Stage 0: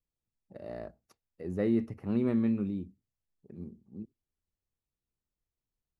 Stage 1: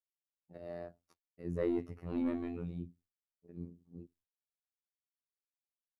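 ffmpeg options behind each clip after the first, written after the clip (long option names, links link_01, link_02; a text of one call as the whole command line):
ffmpeg -i in.wav -af "asoftclip=type=tanh:threshold=-21dB,agate=range=-33dB:threshold=-59dB:ratio=3:detection=peak,afftfilt=real='hypot(re,im)*cos(PI*b)':imag='0':win_size=2048:overlap=0.75" out.wav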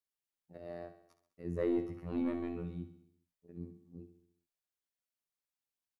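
ffmpeg -i in.wav -af "aecho=1:1:67|134|201|268|335|402:0.282|0.155|0.0853|0.0469|0.0258|0.0142" out.wav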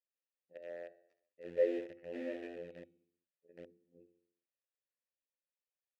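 ffmpeg -i in.wav -filter_complex "[0:a]asplit=2[link_01][link_02];[link_02]acrusher=bits=5:mix=0:aa=0.000001,volume=-6.5dB[link_03];[link_01][link_03]amix=inputs=2:normalize=0,asplit=3[link_04][link_05][link_06];[link_04]bandpass=frequency=530:width_type=q:width=8,volume=0dB[link_07];[link_05]bandpass=frequency=1840:width_type=q:width=8,volume=-6dB[link_08];[link_06]bandpass=frequency=2480:width_type=q:width=8,volume=-9dB[link_09];[link_07][link_08][link_09]amix=inputs=3:normalize=0,volume=5.5dB" out.wav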